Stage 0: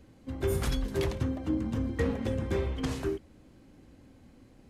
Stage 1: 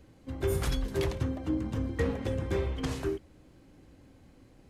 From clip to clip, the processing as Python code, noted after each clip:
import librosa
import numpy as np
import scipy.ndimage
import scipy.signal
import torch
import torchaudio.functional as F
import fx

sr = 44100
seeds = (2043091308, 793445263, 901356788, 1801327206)

y = fx.peak_eq(x, sr, hz=230.0, db=-7.5, octaves=0.21)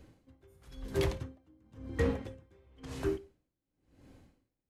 y = fx.rev_schroeder(x, sr, rt60_s=0.43, comb_ms=38, drr_db=18.0)
y = y * 10.0 ** (-33 * (0.5 - 0.5 * np.cos(2.0 * np.pi * 0.97 * np.arange(len(y)) / sr)) / 20.0)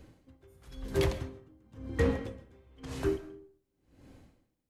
y = fx.rev_freeverb(x, sr, rt60_s=0.58, hf_ratio=0.5, predelay_ms=90, drr_db=15.0)
y = F.gain(torch.from_numpy(y), 2.5).numpy()